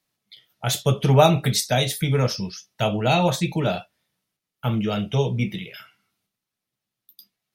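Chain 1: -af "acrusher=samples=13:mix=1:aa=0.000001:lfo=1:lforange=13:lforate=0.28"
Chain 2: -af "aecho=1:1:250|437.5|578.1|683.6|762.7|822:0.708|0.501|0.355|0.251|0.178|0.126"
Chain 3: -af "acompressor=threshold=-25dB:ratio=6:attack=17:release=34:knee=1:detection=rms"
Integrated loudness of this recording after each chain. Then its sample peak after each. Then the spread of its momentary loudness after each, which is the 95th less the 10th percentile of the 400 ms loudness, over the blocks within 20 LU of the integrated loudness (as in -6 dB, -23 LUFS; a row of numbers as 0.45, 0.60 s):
-22.0, -20.0, -27.5 LUFS; -3.0, -2.5, -11.5 dBFS; 14, 14, 8 LU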